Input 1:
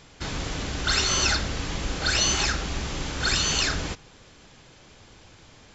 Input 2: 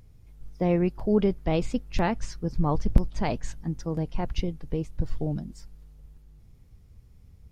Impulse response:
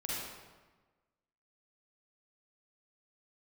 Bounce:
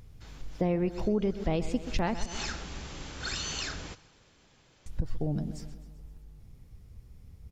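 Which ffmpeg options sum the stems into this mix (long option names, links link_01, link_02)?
-filter_complex "[0:a]volume=-11dB,afade=type=in:start_time=1.15:duration=0.78:silence=0.316228,asplit=2[link_01][link_02];[link_02]volume=-21.5dB[link_03];[1:a]volume=2dB,asplit=3[link_04][link_05][link_06];[link_04]atrim=end=2.26,asetpts=PTS-STARTPTS,afade=type=out:start_time=2.256:duration=0.004:curve=hsin[link_07];[link_05]atrim=start=2.26:end=4.86,asetpts=PTS-STARTPTS,volume=0[link_08];[link_06]atrim=start=4.86,asetpts=PTS-STARTPTS,afade=type=in:duration=0.004:curve=hsin[link_09];[link_07][link_08][link_09]concat=n=3:v=0:a=1,asplit=3[link_10][link_11][link_12];[link_11]volume=-15dB[link_13];[link_12]apad=whole_len=253176[link_14];[link_01][link_14]sidechaincompress=threshold=-38dB:ratio=8:attack=16:release=103[link_15];[link_03][link_13]amix=inputs=2:normalize=0,aecho=0:1:129|258|387|516|645|774|903|1032:1|0.54|0.292|0.157|0.085|0.0459|0.0248|0.0134[link_16];[link_15][link_10][link_16]amix=inputs=3:normalize=0,acompressor=threshold=-26dB:ratio=3"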